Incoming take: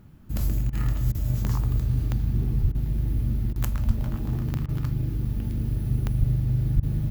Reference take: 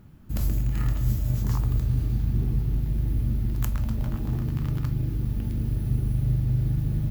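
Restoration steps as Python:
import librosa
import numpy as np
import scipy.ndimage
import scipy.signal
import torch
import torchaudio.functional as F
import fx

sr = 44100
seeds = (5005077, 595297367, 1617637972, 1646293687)

y = fx.fix_declick_ar(x, sr, threshold=10.0)
y = fx.fix_deplosive(y, sr, at_s=(2.61, 3.86, 6.19, 6.75))
y = fx.fix_interpolate(y, sr, at_s=(0.7, 1.12, 2.72, 3.53, 4.66, 6.8), length_ms=27.0)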